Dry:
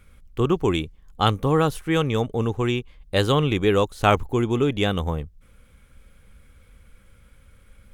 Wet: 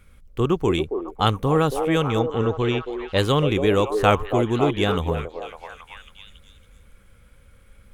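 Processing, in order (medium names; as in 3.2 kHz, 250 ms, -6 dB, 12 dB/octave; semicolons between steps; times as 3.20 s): 2.19–3.18 s: low-pass 5.9 kHz 24 dB/octave; repeats whose band climbs or falls 276 ms, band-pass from 480 Hz, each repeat 0.7 oct, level -3 dB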